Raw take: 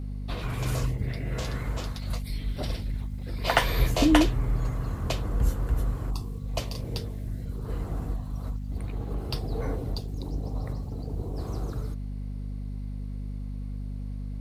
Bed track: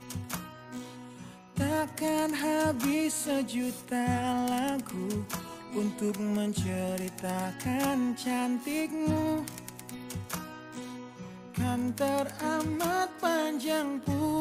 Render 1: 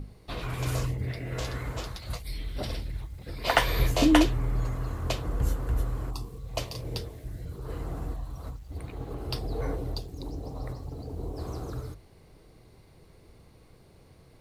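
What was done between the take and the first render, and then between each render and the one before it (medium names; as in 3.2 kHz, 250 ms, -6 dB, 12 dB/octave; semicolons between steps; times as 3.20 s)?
hum notches 50/100/150/200/250 Hz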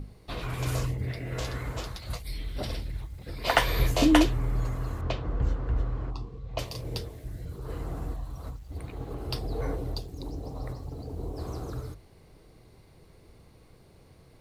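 5.01–6.59 s: distance through air 180 m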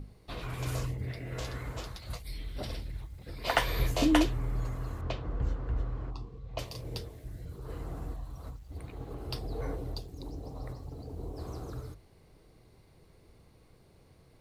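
trim -4.5 dB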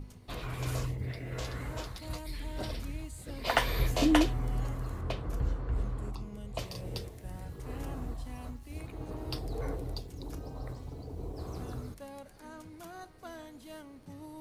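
add bed track -18 dB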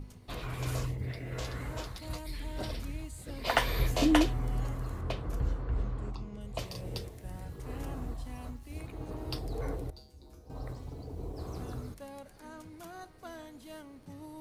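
5.64–6.41 s: low-pass 6.2 kHz; 9.90–10.50 s: feedback comb 70 Hz, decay 0.47 s, harmonics odd, mix 90%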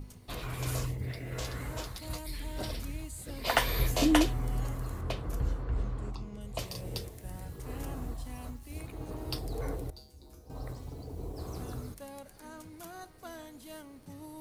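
treble shelf 7 kHz +8.5 dB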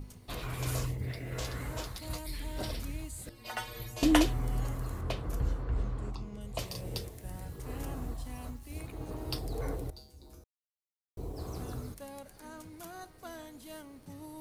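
3.29–4.03 s: inharmonic resonator 110 Hz, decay 0.3 s, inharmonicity 0.008; 10.44–11.17 s: mute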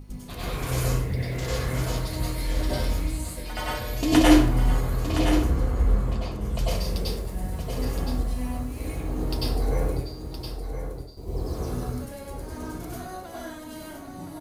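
delay 1017 ms -8 dB; plate-style reverb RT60 0.62 s, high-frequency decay 0.6×, pre-delay 85 ms, DRR -7.5 dB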